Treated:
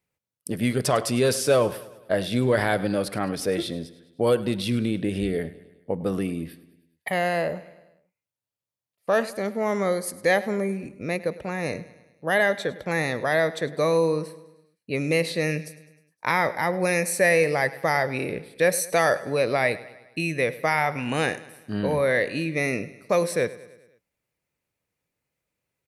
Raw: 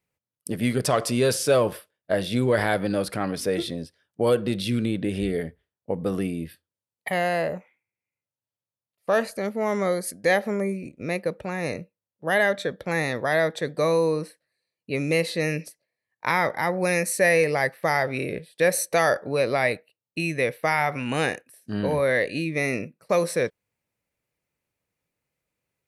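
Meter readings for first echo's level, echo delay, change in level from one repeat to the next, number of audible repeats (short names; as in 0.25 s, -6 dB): -18.0 dB, 0.103 s, -5.0 dB, 4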